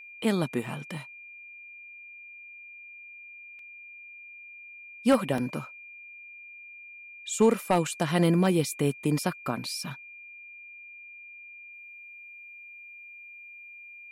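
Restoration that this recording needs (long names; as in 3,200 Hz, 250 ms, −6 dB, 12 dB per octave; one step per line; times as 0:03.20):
clipped peaks rebuilt −14 dBFS
notch filter 2,400 Hz, Q 30
repair the gap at 0:03.59/0:05.38, 2.6 ms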